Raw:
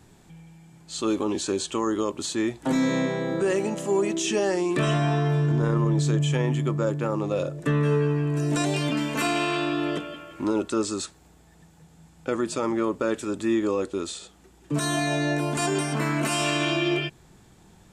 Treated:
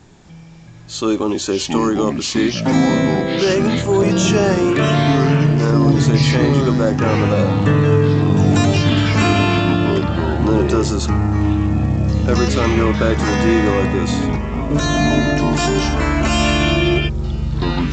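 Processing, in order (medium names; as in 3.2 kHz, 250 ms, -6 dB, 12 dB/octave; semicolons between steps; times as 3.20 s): 5.23–5.64 s: CVSD coder 16 kbps; ever faster or slower copies 251 ms, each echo -6 st, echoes 3; trim +7.5 dB; µ-law 128 kbps 16 kHz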